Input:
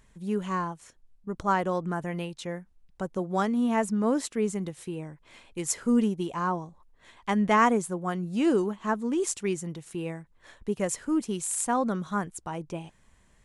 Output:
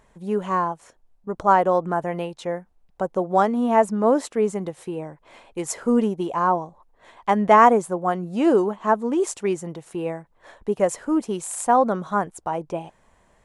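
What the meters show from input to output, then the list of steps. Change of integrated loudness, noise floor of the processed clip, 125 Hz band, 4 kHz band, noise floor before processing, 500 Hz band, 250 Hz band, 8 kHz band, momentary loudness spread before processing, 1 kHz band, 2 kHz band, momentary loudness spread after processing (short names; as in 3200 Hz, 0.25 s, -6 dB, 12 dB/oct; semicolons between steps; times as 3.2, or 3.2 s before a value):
+6.5 dB, -61 dBFS, +1.5 dB, +0.5 dB, -62 dBFS, +9.0 dB, +3.0 dB, -0.5 dB, 14 LU, +9.5 dB, +3.5 dB, 15 LU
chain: bell 690 Hz +13 dB 2 oct; gain -1 dB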